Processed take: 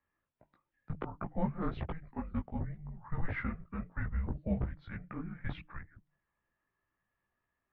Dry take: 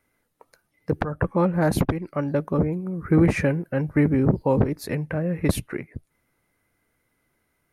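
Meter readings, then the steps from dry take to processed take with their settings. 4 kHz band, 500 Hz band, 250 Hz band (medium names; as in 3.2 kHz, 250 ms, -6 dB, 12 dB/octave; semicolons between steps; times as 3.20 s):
-18.5 dB, -21.0 dB, -17.0 dB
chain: de-hum 158.8 Hz, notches 4; chorus voices 6, 1.4 Hz, delay 18 ms, depth 3 ms; mistuned SSB -330 Hz 240–3500 Hz; trim -8 dB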